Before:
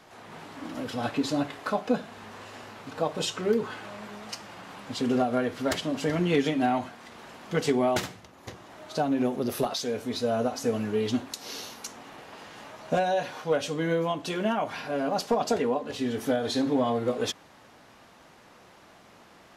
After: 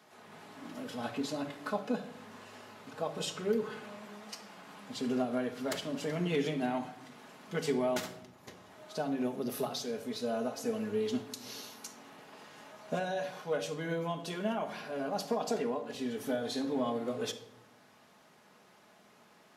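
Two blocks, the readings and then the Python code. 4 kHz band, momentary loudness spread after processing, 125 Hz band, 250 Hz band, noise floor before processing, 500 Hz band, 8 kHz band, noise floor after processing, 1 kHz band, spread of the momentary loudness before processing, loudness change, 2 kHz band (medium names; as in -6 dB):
-7.0 dB, 18 LU, -7.5 dB, -7.0 dB, -54 dBFS, -7.0 dB, -6.0 dB, -61 dBFS, -9.0 dB, 18 LU, -7.5 dB, -7.0 dB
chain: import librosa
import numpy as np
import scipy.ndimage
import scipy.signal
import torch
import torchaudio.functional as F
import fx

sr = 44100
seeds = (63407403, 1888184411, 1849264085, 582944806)

y = scipy.signal.sosfilt(scipy.signal.butter(2, 120.0, 'highpass', fs=sr, output='sos'), x)
y = fx.high_shelf(y, sr, hz=9600.0, db=6.0)
y = fx.room_shoebox(y, sr, seeds[0], volume_m3=2300.0, walls='furnished', distance_m=1.4)
y = y * 10.0 ** (-8.5 / 20.0)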